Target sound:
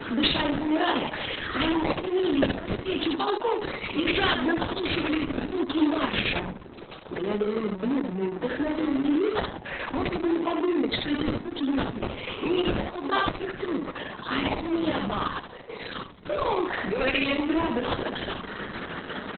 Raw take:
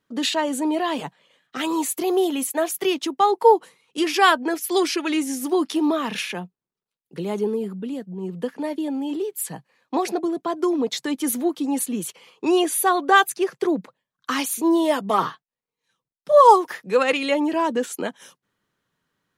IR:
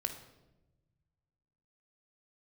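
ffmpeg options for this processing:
-filter_complex "[0:a]aeval=exprs='val(0)+0.5*0.0473*sgn(val(0))':c=same,afftdn=nr=16:nf=-36,highpass=f=210:w=0.5412,highpass=f=210:w=1.3066,highshelf=f=7.7k:t=q:w=3:g=9.5,acrossover=split=280|3000[a][b][c];[b]acompressor=threshold=-17dB:ratio=5[d];[a][d][c]amix=inputs=3:normalize=0,acrossover=split=1600[e][f];[e]alimiter=limit=-22dB:level=0:latency=1:release=217[g];[g][f]amix=inputs=2:normalize=0,acompressor=threshold=-21dB:ratio=4,asplit=2[h][i];[i]acrusher=samples=36:mix=1:aa=0.000001:lfo=1:lforange=36:lforate=0.82,volume=-6dB[j];[h][j]amix=inputs=2:normalize=0,aecho=1:1:72|144|216:0.562|0.135|0.0324" -ar 48000 -c:a libopus -b:a 6k

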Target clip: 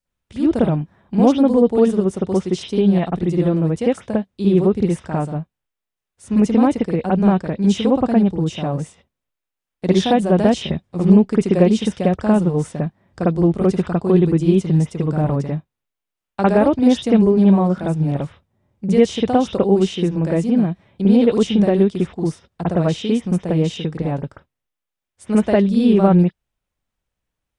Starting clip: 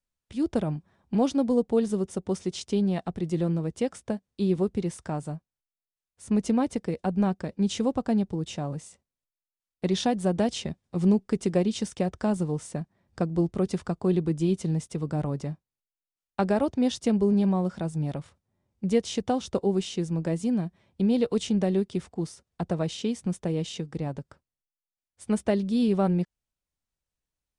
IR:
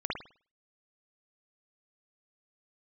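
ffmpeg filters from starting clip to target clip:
-filter_complex "[0:a]asettb=1/sr,asplit=3[a][b][c];[a]atrim=end=2.594[d];[b]atrim=start=2.59:end=3.12,asetpts=PTS-STARTPTS,afade=t=in:d=0.004:c=qsin,afade=t=out:st=0.526:d=0.004:c=qsin,bandreject=f=7.1k:w=7.8[e];[c]atrim=start=3.116[f];[d][e]acrossfade=d=0.004:c1=hsin:c2=qsin[g];[g][f]acrossfade=d=0.004:c1=qsin:c2=hsin[h];[1:a]atrim=start_sample=2205,atrim=end_sample=3528[i];[h][i]afir=irnorm=-1:irlink=0,volume=4.5dB"

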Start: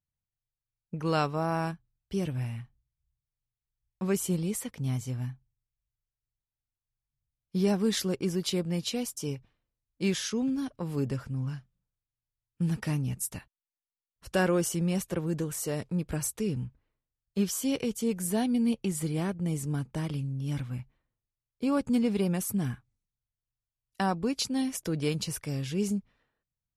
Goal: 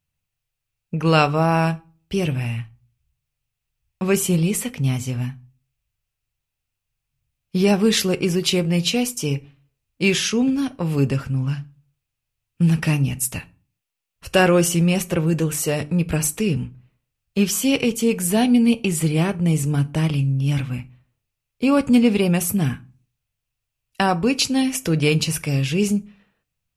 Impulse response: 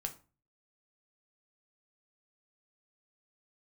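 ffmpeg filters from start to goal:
-filter_complex "[0:a]equalizer=f=2.6k:w=3.2:g=8.5,asplit=2[a][b];[1:a]atrim=start_sample=2205[c];[b][c]afir=irnorm=-1:irlink=0,volume=-2.5dB[d];[a][d]amix=inputs=2:normalize=0,volume=6dB"

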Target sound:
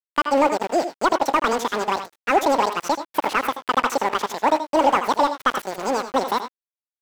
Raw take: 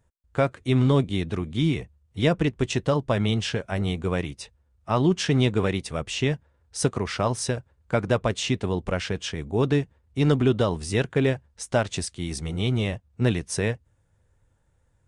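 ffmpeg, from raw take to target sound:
-filter_complex "[0:a]highpass=f=190:p=1,asetrate=94815,aresample=44100,aeval=exprs='val(0)*gte(abs(val(0)),0.0299)':c=same,asplit=2[a][b];[b]aecho=0:1:80|97:0.237|0.15[c];[a][c]amix=inputs=2:normalize=0,asplit=2[d][e];[e]highpass=f=720:p=1,volume=18dB,asoftclip=type=tanh:threshold=-2.5dB[f];[d][f]amix=inputs=2:normalize=0,lowpass=f=1.2k:p=1,volume=-6dB"

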